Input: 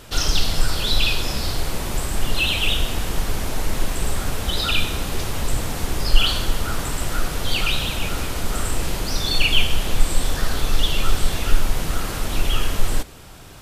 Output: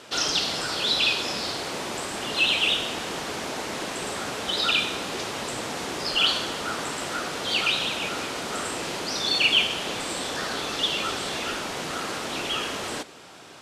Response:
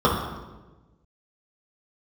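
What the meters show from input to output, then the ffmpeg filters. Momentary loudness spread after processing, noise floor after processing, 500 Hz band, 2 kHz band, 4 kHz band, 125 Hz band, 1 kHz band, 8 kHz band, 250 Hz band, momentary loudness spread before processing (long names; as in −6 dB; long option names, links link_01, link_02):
10 LU, −39 dBFS, −0.5 dB, 0.0 dB, 0.0 dB, −16.0 dB, 0.0 dB, −3.5 dB, −4.0 dB, 7 LU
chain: -af "highpass=270,lowpass=7100"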